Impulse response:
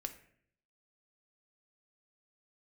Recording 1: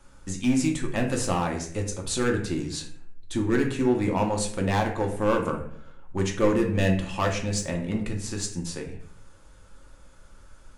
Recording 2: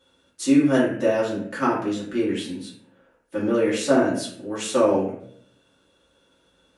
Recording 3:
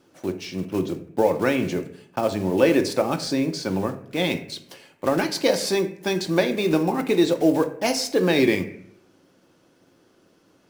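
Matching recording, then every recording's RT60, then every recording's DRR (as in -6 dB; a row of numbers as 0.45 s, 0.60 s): 3; 0.60 s, 0.60 s, 0.60 s; 1.0 dB, -8.5 dB, 6.5 dB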